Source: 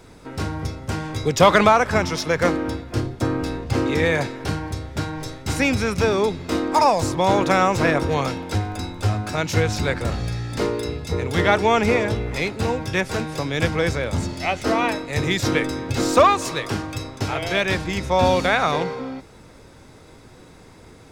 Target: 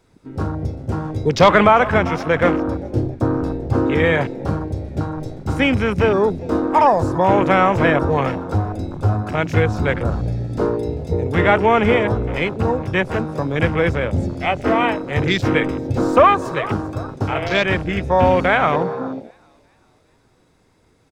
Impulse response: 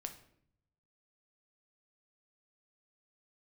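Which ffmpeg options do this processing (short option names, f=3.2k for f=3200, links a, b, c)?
-filter_complex "[0:a]asplit=5[a][b][c][d][e];[b]adelay=396,afreqshift=49,volume=-17.5dB[f];[c]adelay=792,afreqshift=98,volume=-24.1dB[g];[d]adelay=1188,afreqshift=147,volume=-30.6dB[h];[e]adelay=1584,afreqshift=196,volume=-37.2dB[i];[a][f][g][h][i]amix=inputs=5:normalize=0,acontrast=28,afwtdn=0.0708,volume=-1dB"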